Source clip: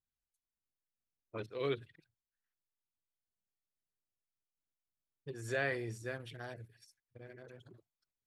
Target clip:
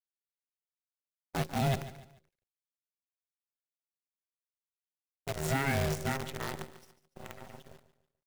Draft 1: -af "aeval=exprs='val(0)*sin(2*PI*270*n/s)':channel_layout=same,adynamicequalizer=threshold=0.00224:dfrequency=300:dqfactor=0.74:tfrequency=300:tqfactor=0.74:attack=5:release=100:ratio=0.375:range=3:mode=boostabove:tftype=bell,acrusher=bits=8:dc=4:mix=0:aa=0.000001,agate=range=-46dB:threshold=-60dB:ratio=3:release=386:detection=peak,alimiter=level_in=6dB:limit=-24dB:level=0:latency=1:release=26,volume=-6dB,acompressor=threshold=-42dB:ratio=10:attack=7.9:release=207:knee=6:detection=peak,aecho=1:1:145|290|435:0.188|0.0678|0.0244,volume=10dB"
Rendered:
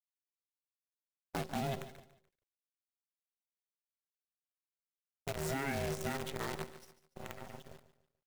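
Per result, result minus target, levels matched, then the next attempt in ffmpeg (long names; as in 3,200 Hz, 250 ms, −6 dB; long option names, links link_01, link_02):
downward compressor: peak gain reduction +8.5 dB; 125 Hz band −2.5 dB
-af "aeval=exprs='val(0)*sin(2*PI*270*n/s)':channel_layout=same,adynamicequalizer=threshold=0.00224:dfrequency=300:dqfactor=0.74:tfrequency=300:tqfactor=0.74:attack=5:release=100:ratio=0.375:range=3:mode=boostabove:tftype=bell,acrusher=bits=8:dc=4:mix=0:aa=0.000001,agate=range=-46dB:threshold=-60dB:ratio=3:release=386:detection=peak,alimiter=level_in=6dB:limit=-24dB:level=0:latency=1:release=26,volume=-6dB,aecho=1:1:145|290|435:0.188|0.0678|0.0244,volume=10dB"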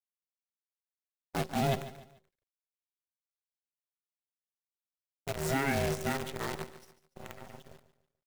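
125 Hz band −3.0 dB
-af "aeval=exprs='val(0)*sin(2*PI*270*n/s)':channel_layout=same,adynamicequalizer=threshold=0.00224:dfrequency=130:dqfactor=0.74:tfrequency=130:tqfactor=0.74:attack=5:release=100:ratio=0.375:range=3:mode=boostabove:tftype=bell,acrusher=bits=8:dc=4:mix=0:aa=0.000001,agate=range=-46dB:threshold=-60dB:ratio=3:release=386:detection=peak,alimiter=level_in=6dB:limit=-24dB:level=0:latency=1:release=26,volume=-6dB,aecho=1:1:145|290|435:0.188|0.0678|0.0244,volume=10dB"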